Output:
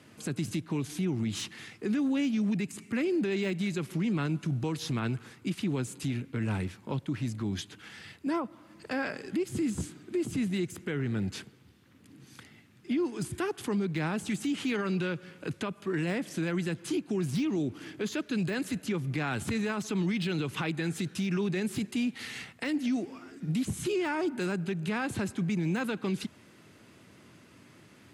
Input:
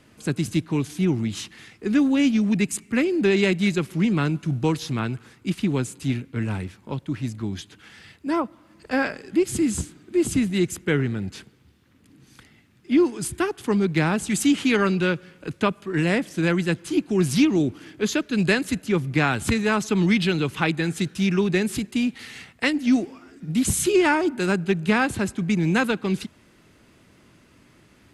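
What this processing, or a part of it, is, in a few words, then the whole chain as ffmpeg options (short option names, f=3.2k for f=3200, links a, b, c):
podcast mastering chain: -af "highpass=f=85:w=0.5412,highpass=f=85:w=1.3066,deesser=0.7,acompressor=threshold=-26dB:ratio=3,alimiter=limit=-22.5dB:level=0:latency=1:release=30" -ar 44100 -c:a libmp3lame -b:a 96k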